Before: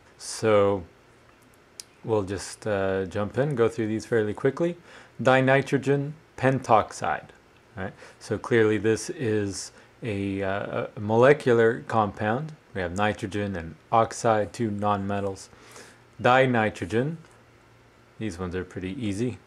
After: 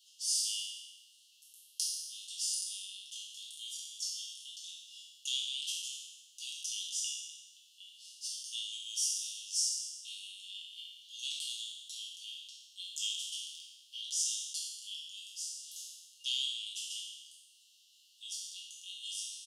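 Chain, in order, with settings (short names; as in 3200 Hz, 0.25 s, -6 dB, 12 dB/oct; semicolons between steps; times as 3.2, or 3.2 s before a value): spectral trails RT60 1.18 s; Chebyshev high-pass 2800 Hz, order 10; comb 5.6 ms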